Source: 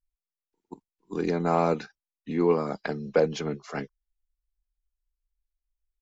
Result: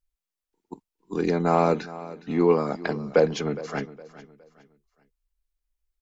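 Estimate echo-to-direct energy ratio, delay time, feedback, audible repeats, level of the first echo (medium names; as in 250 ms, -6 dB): -16.5 dB, 413 ms, 33%, 2, -17.0 dB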